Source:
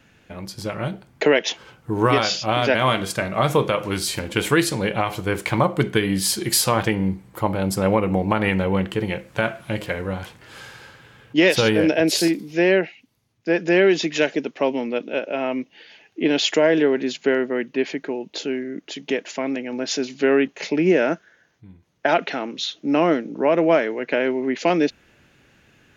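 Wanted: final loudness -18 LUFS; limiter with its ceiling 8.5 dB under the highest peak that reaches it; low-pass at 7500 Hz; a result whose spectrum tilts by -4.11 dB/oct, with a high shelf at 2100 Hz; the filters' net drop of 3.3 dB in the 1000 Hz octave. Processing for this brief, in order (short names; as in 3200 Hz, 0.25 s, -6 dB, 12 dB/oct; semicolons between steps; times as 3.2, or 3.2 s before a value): LPF 7500 Hz; bell 1000 Hz -6 dB; high shelf 2100 Hz +6 dB; gain +5.5 dB; limiter -6 dBFS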